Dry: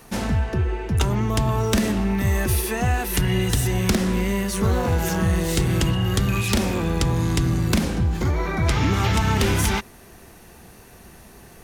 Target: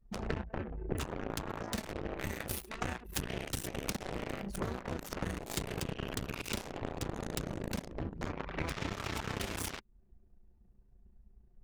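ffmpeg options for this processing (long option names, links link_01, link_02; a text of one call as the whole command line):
ffmpeg -i in.wav -af "adynamicequalizer=threshold=0.00794:dfrequency=750:dqfactor=2.8:tfrequency=750:tqfactor=2.8:attack=5:release=100:ratio=0.375:range=2.5:mode=cutabove:tftype=bell,aeval=exprs='0.422*(cos(1*acos(clip(val(0)/0.422,-1,1)))-cos(1*PI/2))+0.00473*(cos(5*acos(clip(val(0)/0.422,-1,1)))-cos(5*PI/2))+0.119*(cos(7*acos(clip(val(0)/0.422,-1,1)))-cos(7*PI/2))':channel_layout=same,anlmdn=100,acompressor=threshold=-30dB:ratio=16,tremolo=f=29:d=0.519" out.wav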